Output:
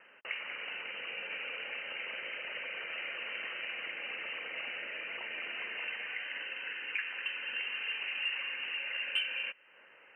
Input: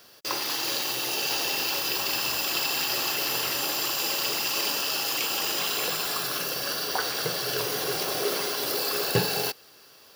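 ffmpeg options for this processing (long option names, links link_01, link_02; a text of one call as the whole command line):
ffmpeg -i in.wav -filter_complex "[0:a]lowpass=frequency=2700:width_type=q:width=0.5098,lowpass=frequency=2700:width_type=q:width=0.6013,lowpass=frequency=2700:width_type=q:width=0.9,lowpass=frequency=2700:width_type=q:width=2.563,afreqshift=-3200,highshelf=frequency=2200:gain=10,acrossover=split=2100[link_01][link_02];[link_01]acompressor=threshold=-48dB:ratio=6[link_03];[link_03][link_02]amix=inputs=2:normalize=0,asoftclip=type=tanh:threshold=-13.5dB,acrossover=split=170 2200:gain=0.126 1 0.0708[link_04][link_05][link_06];[link_04][link_05][link_06]amix=inputs=3:normalize=0" out.wav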